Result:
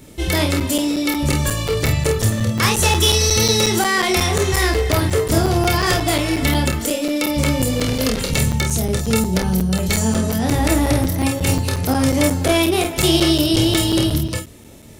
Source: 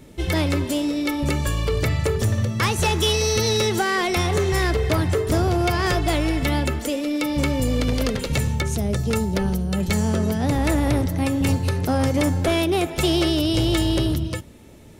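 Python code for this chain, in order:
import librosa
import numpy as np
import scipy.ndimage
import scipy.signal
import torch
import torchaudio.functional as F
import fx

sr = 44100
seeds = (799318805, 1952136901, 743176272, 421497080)

y = fx.high_shelf(x, sr, hz=4400.0, db=8.0)
y = fx.room_early_taps(y, sr, ms=(27, 49), db=(-5.0, -6.5))
y = fx.buffer_crackle(y, sr, first_s=0.6, period_s=0.18, block=256, kind='zero')
y = y * 10.0 ** (1.5 / 20.0)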